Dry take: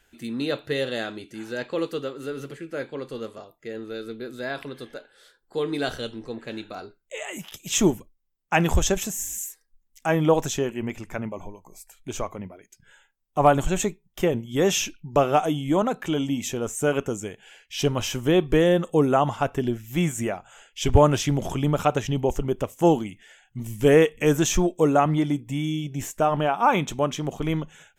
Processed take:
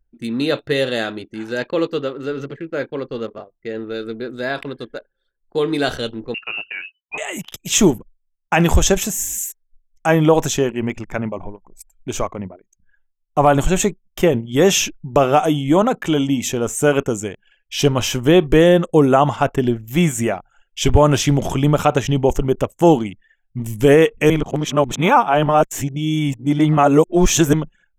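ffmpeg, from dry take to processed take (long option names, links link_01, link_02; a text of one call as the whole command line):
ffmpeg -i in.wav -filter_complex "[0:a]asettb=1/sr,asplit=3[link_01][link_02][link_03];[link_01]atrim=end=1.714[link_04];[link_02]atrim=start=1.71:end=3.92,asetpts=PTS-STARTPTS,afade=type=in:duration=0.004:curve=qsin,afade=type=out:start_time=2.206:duration=0.004:curve=qsin,equalizer=frequency=9900:width=2.6:gain=-13.5[link_05];[link_03]atrim=start=3.916[link_06];[link_04][link_05]acrossfade=duration=0.004:curve1=hsin:curve2=qsin[link_07];[link_07][link_06]acrossfade=duration=0.004:curve1=qsin:curve2=hsin,asettb=1/sr,asplit=3[link_08][link_09][link_10];[link_08]atrim=end=6.344[link_11];[link_09]atrim=start=6.34:end=7.18,asetpts=PTS-STARTPTS,afade=type=in:duration=0.004:curve=qsin,afade=type=out:start_time=0.836:duration=0.004:curve=qsin,lowpass=frequency=2600:width_type=q:width=0.5098,lowpass=frequency=2600:width_type=q:width=0.6013,lowpass=frequency=2600:width_type=q:width=0.9,lowpass=frequency=2600:width_type=q:width=2.563,afreqshift=-3000[link_12];[link_10]atrim=start=7.176[link_13];[link_11][link_12]acrossfade=duration=0.004:curve1=hsin:curve2=qsin[link_14];[link_14][link_13]acrossfade=duration=0.004:curve1=qsin:curve2=hsin,asplit=3[link_15][link_16][link_17];[link_15]atrim=end=24.302[link_18];[link_16]atrim=start=24.298:end=27.532,asetpts=PTS-STARTPTS,areverse[link_19];[link_17]atrim=start=27.528[link_20];[link_18][link_19]acrossfade=duration=0.004:curve1=hsin:curve2=hsin[link_21];[link_21][link_20]acrossfade=duration=0.004:curve1=hsin:curve2=hsin,anlmdn=0.158,alimiter=level_in=9dB:limit=-1dB:release=50:level=0:latency=1,volume=-1.5dB" out.wav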